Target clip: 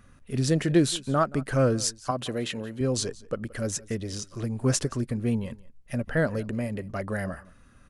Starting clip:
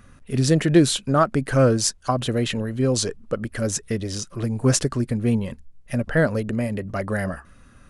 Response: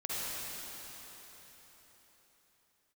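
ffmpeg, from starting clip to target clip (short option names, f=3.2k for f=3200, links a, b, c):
-filter_complex "[0:a]asettb=1/sr,asplit=3[a][b][c];[a]atrim=end=2.114[d];[b]atrim=start=2.11:end=2.81,asetpts=PTS-STARTPTS,afade=t=in:d=0.004:c=qsin,afade=t=out:st=0.696:d=0.004:c=qsin,highpass=f=210:p=1[e];[c]atrim=start=2.806[f];[d][e]acrossfade=d=0.004:c1=hsin:c2=qsin[g];[g][f]acrossfade=d=0.004:c1=qsin:c2=hsin,asplit=2[h][i];[i]aecho=0:1:175:0.0841[j];[h][j]amix=inputs=2:normalize=0,volume=-5.5dB"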